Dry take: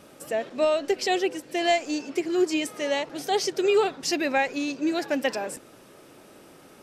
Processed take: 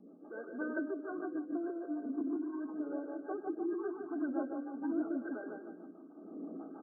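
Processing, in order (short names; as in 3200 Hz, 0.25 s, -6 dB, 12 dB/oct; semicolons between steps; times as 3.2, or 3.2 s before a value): formant sharpening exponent 1.5; recorder AGC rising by 8.9 dB/s; soft clip -26 dBFS, distortion -9 dB; low-pass opened by the level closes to 710 Hz, open at -18.5 dBFS; harmonic tremolo 1.4 Hz, depth 70%, crossover 1100 Hz; feedback echo 0.15 s, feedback 39%, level -5 dB; reverb RT60 1.1 s, pre-delay 3 ms, DRR 10.5 dB; formant shift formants -3 st; FFT band-pass 170–1600 Hz; rotary speaker horn 6.3 Hz; dynamic EQ 750 Hz, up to -4 dB, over -42 dBFS, Q 0.87; gain +1 dB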